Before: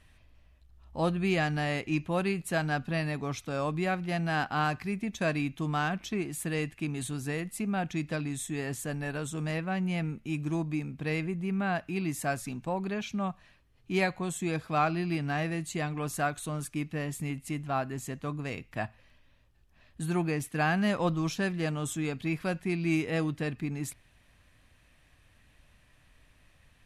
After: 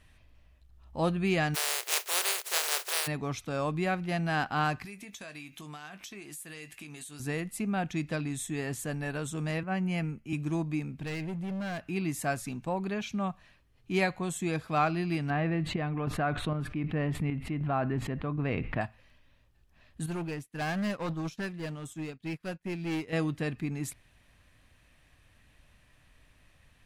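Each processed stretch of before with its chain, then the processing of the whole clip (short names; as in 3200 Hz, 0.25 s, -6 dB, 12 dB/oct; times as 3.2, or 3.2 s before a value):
1.54–3.06 spectral contrast lowered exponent 0.15 + brick-wall FIR high-pass 350 Hz
4.85–7.2 tilt +3 dB/oct + compressor, threshold -42 dBFS + doubler 20 ms -11 dB
9.63–10.33 Butterworth band-stop 3700 Hz, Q 5.8 + three-band expander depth 70%
10.99–11.86 bell 930 Hz -4 dB 1.6 oct + hard clip -32.5 dBFS
15.3–18.81 air absorption 430 m + chopper 1.3 Hz, depth 65%, duty 60% + fast leveller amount 70%
20.06–23.13 hard clip -28 dBFS + upward expander 2.5:1, over -48 dBFS
whole clip: dry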